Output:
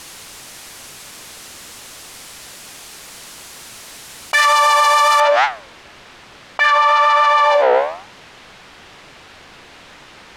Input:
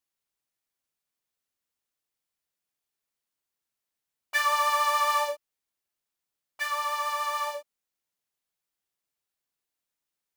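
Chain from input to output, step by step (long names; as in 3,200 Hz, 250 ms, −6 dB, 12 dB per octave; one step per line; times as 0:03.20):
low-pass filter 10,000 Hz 12 dB per octave, from 0:05.20 3,000 Hz
flanger 1.1 Hz, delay 6.8 ms, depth 9.6 ms, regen +85%
boost into a limiter +22 dB
envelope flattener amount 100%
level −4.5 dB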